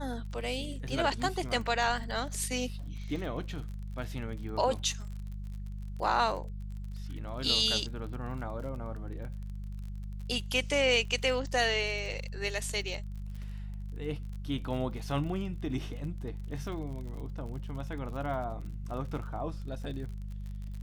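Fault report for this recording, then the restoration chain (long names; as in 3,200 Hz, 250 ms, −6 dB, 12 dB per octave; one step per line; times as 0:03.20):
surface crackle 43 per second −40 dBFS
mains hum 50 Hz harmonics 4 −39 dBFS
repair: click removal
hum removal 50 Hz, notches 4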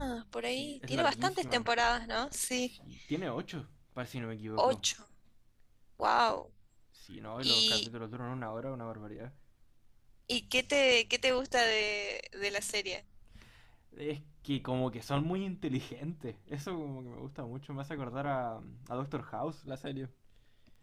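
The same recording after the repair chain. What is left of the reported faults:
none of them is left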